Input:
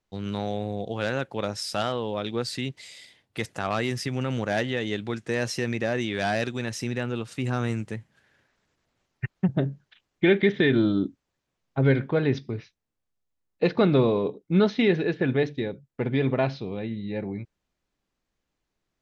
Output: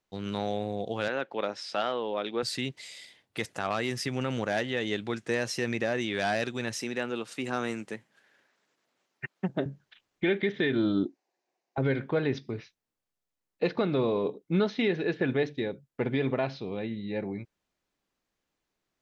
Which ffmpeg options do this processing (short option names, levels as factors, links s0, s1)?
-filter_complex "[0:a]asettb=1/sr,asplit=3[s0][s1][s2];[s0]atrim=end=1.084[s3];[s1]atrim=start=1.08:end=2.43,asetpts=PTS-STARTPTS,afade=t=in:d=0.004:c=qsin,afade=t=out:st=1.346:d=0.004:c=qsin,highpass=250,lowpass=3700[s4];[s2]atrim=start=2.426[s5];[s3][s4]acrossfade=d=0.004:c1=hsin:c2=qsin[s6];[s6][s5]acrossfade=d=0.004:c1=qsin:c2=hsin,asettb=1/sr,asplit=3[s7][s8][s9];[s7]atrim=end=6.804[s10];[s8]atrim=start=6.8:end=9.66,asetpts=PTS-STARTPTS,afade=t=in:d=0.004:c=qsin,afade=t=out:st=2.856:d=0.004:c=qsin,highpass=220[s11];[s9]atrim=start=9.656[s12];[s10][s11]acrossfade=d=0.004:c1=hsin:c2=qsin[s13];[s13][s12]acrossfade=d=0.004:c1=qsin:c2=hsin,asettb=1/sr,asplit=3[s14][s15][s16];[s14]atrim=end=11.054[s17];[s15]atrim=start=11.05:end=11.78,asetpts=PTS-STARTPTS,afade=t=in:d=0.004:c=qsin,afade=t=out:st=0.726:d=0.004:c=qsin,highpass=350,equalizer=f=360:t=q:w=4:g=8,equalizer=f=750:t=q:w=4:g=10,equalizer=f=1300:t=q:w=4:g=-9,equalizer=f=3300:t=q:w=4:g=-9,lowpass=f=6800:w=0.5412,lowpass=f=6800:w=1.3066[s18];[s16]atrim=start=11.776[s19];[s17][s18]acrossfade=d=0.004:c1=hsin:c2=qsin[s20];[s20][s19]acrossfade=d=0.004:c1=qsin:c2=hsin,lowshelf=f=140:g=-9.5,alimiter=limit=0.15:level=0:latency=1:release=301"